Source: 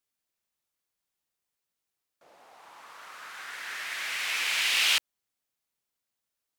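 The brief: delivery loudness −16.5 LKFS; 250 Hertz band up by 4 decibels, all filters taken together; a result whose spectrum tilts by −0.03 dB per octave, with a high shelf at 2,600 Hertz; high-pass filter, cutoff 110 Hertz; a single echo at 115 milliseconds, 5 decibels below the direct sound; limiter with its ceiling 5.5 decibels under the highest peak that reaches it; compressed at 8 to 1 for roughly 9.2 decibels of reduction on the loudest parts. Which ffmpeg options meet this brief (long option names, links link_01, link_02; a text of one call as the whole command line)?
ffmpeg -i in.wav -af "highpass=110,equalizer=frequency=250:width_type=o:gain=5.5,highshelf=frequency=2600:gain=-3.5,acompressor=threshold=-32dB:ratio=8,alimiter=level_in=5dB:limit=-24dB:level=0:latency=1,volume=-5dB,aecho=1:1:115:0.562,volume=21dB" out.wav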